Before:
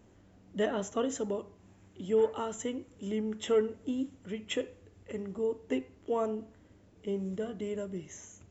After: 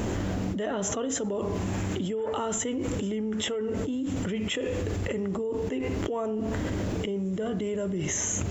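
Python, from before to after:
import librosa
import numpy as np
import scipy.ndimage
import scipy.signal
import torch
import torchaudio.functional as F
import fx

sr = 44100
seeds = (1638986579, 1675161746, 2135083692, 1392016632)

y = fx.env_flatten(x, sr, amount_pct=100)
y = y * librosa.db_to_amplitude(-7.0)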